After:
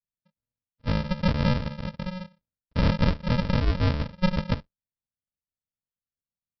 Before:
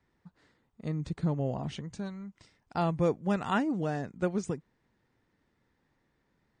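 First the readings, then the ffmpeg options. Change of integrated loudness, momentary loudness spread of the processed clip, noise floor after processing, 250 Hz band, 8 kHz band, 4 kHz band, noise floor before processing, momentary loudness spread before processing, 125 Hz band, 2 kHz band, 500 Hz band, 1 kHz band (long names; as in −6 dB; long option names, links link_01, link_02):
+5.5 dB, 12 LU, below −85 dBFS, +4.0 dB, can't be measured, +12.0 dB, −76 dBFS, 12 LU, +8.5 dB, +6.5 dB, +0.5 dB, +1.0 dB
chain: -filter_complex "[0:a]bandreject=frequency=50:width_type=h:width=6,bandreject=frequency=100:width_type=h:width=6,bandreject=frequency=150:width_type=h:width=6,bandreject=frequency=200:width_type=h:width=6,bandreject=frequency=250:width_type=h:width=6,bandreject=frequency=300:width_type=h:width=6,bandreject=frequency=350:width_type=h:width=6,afwtdn=0.00631,agate=range=-21dB:threshold=-45dB:ratio=16:detection=peak,equalizer=frequency=500:width=1.1:gain=12,aecho=1:1:6.1:0.75,acrossover=split=3700[link_01][link_02];[link_01]aeval=exprs='(mod(2.24*val(0)+1,2)-1)/2.24':channel_layout=same[link_03];[link_03][link_02]amix=inputs=2:normalize=0,aeval=exprs='0.473*(cos(1*acos(clip(val(0)/0.473,-1,1)))-cos(1*PI/2))+0.168*(cos(5*acos(clip(val(0)/0.473,-1,1)))-cos(5*PI/2))+0.15*(cos(6*acos(clip(val(0)/0.473,-1,1)))-cos(6*PI/2))+0.168*(cos(8*acos(clip(val(0)/0.473,-1,1)))-cos(8*PI/2))':channel_layout=same,aresample=11025,acrusher=samples=30:mix=1:aa=0.000001,aresample=44100,asuperstop=centerf=770:order=4:qfactor=6.6,volume=-7.5dB"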